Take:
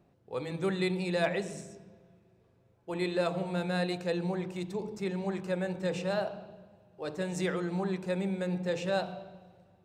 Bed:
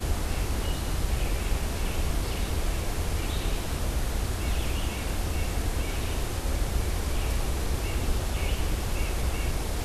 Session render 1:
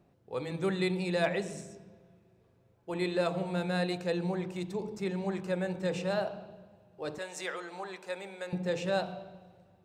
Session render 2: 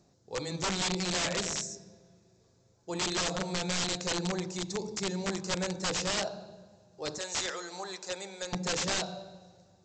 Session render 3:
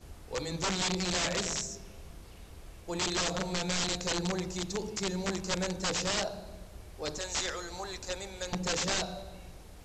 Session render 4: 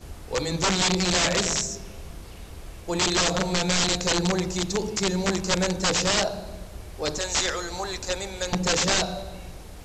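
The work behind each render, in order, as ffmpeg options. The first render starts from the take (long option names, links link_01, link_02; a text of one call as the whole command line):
ffmpeg -i in.wav -filter_complex "[0:a]asettb=1/sr,asplit=3[link_01][link_02][link_03];[link_01]atrim=end=7.184[link_04];[link_02]atrim=start=7.18:end=8.53,asetpts=PTS-STARTPTS,afade=type=in:duration=0.004:curve=qsin,afade=type=out:start_time=1.346:duration=0.004:curve=qsin,highpass=640[link_05];[link_03]atrim=start=8.526[link_06];[link_04][link_05]acrossfade=duration=0.004:curve1=hsin:curve2=qsin[link_07];[link_07][link_06]acrossfade=duration=0.004:curve1=qsin:curve2=hsin" out.wav
ffmpeg -i in.wav -af "aexciter=amount=6.8:drive=7.2:freq=4200,aresample=16000,aeval=exprs='(mod(17.8*val(0)+1,2)-1)/17.8':channel_layout=same,aresample=44100" out.wav
ffmpeg -i in.wav -i bed.wav -filter_complex "[1:a]volume=-21dB[link_01];[0:a][link_01]amix=inputs=2:normalize=0" out.wav
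ffmpeg -i in.wav -af "volume=8.5dB" out.wav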